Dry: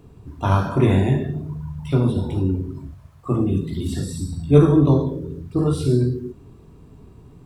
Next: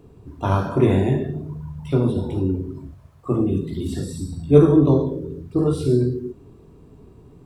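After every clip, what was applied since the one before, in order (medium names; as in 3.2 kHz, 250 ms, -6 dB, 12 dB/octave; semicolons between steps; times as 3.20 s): peaking EQ 420 Hz +5.5 dB 1.5 oct; trim -3 dB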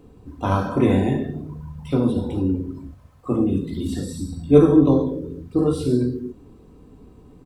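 comb 3.9 ms, depth 41%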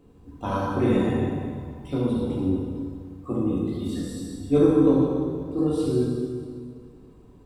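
plate-style reverb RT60 2 s, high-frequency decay 0.85×, DRR -2.5 dB; trim -7.5 dB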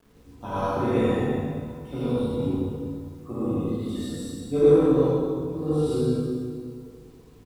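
speakerphone echo 80 ms, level -7 dB; gated-style reverb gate 160 ms rising, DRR -6.5 dB; bit crusher 9-bit; trim -7.5 dB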